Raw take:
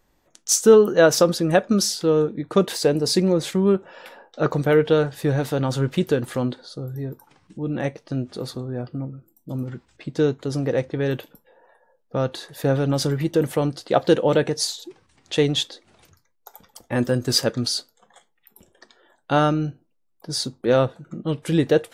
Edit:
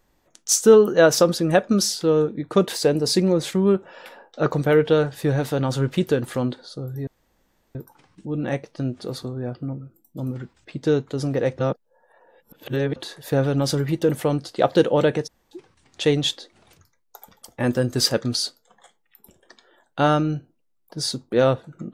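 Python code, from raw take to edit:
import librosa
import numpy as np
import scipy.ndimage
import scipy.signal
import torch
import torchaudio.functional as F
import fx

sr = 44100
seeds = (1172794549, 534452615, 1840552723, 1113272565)

y = fx.edit(x, sr, fx.insert_room_tone(at_s=7.07, length_s=0.68),
    fx.reverse_span(start_s=10.91, length_s=1.37),
    fx.room_tone_fill(start_s=14.59, length_s=0.25, crossfade_s=0.02), tone=tone)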